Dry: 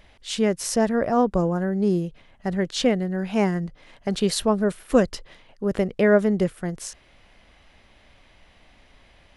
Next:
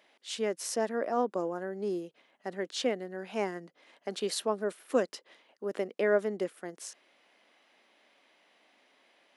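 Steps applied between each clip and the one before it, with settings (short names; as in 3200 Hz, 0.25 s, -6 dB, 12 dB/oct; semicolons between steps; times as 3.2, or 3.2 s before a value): HPF 270 Hz 24 dB/oct; gain -8 dB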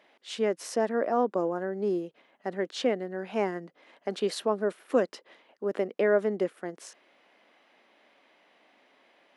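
high shelf 4000 Hz -11.5 dB; in parallel at -2.5 dB: limiter -22.5 dBFS, peak gain reduction 8 dB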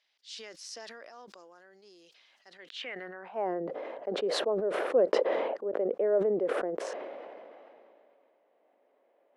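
band-pass sweep 5000 Hz -> 520 Hz, 2.49–3.57; sustainer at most 22 dB/s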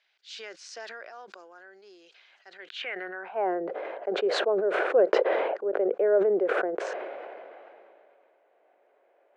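speaker cabinet 260–7200 Hz, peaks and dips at 260 Hz -7 dB, 380 Hz +5 dB, 730 Hz +4 dB, 1500 Hz +9 dB, 2400 Hz +5 dB, 5400 Hz -5 dB; gain +2 dB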